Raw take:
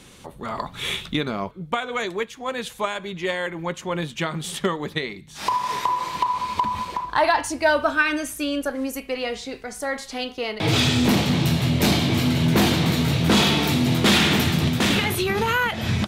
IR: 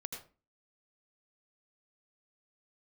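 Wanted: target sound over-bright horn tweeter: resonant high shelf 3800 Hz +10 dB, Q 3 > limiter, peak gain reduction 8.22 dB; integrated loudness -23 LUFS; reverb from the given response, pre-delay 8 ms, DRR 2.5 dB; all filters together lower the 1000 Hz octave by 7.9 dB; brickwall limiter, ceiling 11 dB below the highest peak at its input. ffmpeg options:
-filter_complex "[0:a]equalizer=f=1k:t=o:g=-8.5,alimiter=limit=-21dB:level=0:latency=1,asplit=2[a][b];[1:a]atrim=start_sample=2205,adelay=8[c];[b][c]afir=irnorm=-1:irlink=0,volume=-1dB[d];[a][d]amix=inputs=2:normalize=0,highshelf=f=3.8k:t=q:w=3:g=10,volume=1.5dB,alimiter=limit=-12.5dB:level=0:latency=1"

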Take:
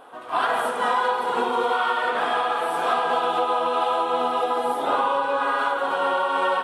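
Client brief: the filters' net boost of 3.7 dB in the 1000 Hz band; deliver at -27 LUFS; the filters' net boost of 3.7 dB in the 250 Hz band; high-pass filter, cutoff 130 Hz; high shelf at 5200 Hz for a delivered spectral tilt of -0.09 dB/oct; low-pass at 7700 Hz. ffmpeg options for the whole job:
-af "highpass=130,lowpass=7.7k,equalizer=f=250:t=o:g=4.5,equalizer=f=1k:t=o:g=4.5,highshelf=f=5.2k:g=-5,volume=-7dB"

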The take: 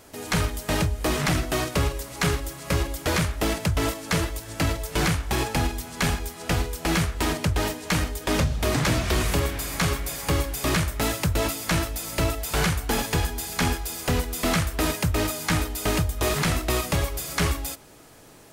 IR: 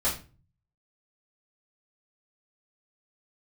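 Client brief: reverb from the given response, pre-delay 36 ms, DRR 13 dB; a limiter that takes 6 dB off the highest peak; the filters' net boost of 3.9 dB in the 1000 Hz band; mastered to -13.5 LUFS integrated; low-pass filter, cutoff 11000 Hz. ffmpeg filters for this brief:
-filter_complex "[0:a]lowpass=11k,equalizer=f=1k:t=o:g=5,alimiter=limit=-17dB:level=0:latency=1,asplit=2[a][b];[1:a]atrim=start_sample=2205,adelay=36[c];[b][c]afir=irnorm=-1:irlink=0,volume=-22.5dB[d];[a][d]amix=inputs=2:normalize=0,volume=13.5dB"

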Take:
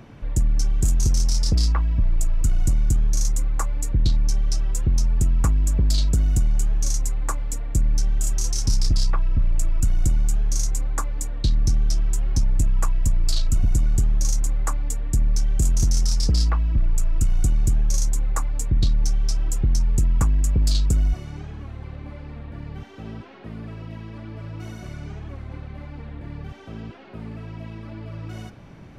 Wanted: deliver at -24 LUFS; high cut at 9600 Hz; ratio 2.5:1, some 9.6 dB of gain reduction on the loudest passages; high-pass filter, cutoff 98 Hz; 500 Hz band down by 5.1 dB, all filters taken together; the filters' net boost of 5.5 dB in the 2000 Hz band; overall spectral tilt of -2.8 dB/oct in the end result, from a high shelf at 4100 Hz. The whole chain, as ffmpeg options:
-af "highpass=98,lowpass=9.6k,equalizer=f=500:t=o:g=-7.5,equalizer=f=2k:t=o:g=6,highshelf=f=4.1k:g=8,acompressor=threshold=-34dB:ratio=2.5,volume=11.5dB"

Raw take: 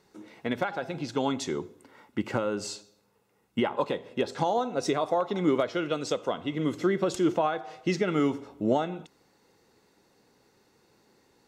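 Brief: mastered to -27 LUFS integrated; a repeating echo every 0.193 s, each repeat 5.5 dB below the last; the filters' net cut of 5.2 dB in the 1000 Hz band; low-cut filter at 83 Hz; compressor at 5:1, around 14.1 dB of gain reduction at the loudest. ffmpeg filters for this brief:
-af "highpass=83,equalizer=f=1k:t=o:g=-7.5,acompressor=threshold=-37dB:ratio=5,aecho=1:1:193|386|579|772|965|1158|1351:0.531|0.281|0.149|0.079|0.0419|0.0222|0.0118,volume=13dB"

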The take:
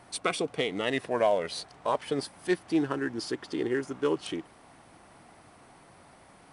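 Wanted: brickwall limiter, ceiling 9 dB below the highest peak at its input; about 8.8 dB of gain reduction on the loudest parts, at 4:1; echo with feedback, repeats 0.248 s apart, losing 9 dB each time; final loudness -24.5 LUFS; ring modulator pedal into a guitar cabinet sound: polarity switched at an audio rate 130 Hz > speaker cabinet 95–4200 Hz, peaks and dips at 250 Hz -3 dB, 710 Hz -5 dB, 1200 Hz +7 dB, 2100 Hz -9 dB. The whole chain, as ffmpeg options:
-af "acompressor=threshold=-31dB:ratio=4,alimiter=level_in=4dB:limit=-24dB:level=0:latency=1,volume=-4dB,aecho=1:1:248|496|744|992:0.355|0.124|0.0435|0.0152,aeval=exprs='val(0)*sgn(sin(2*PI*130*n/s))':c=same,highpass=95,equalizer=f=250:t=q:w=4:g=-3,equalizer=f=710:t=q:w=4:g=-5,equalizer=f=1.2k:t=q:w=4:g=7,equalizer=f=2.1k:t=q:w=4:g=-9,lowpass=f=4.2k:w=0.5412,lowpass=f=4.2k:w=1.3066,volume=15dB"

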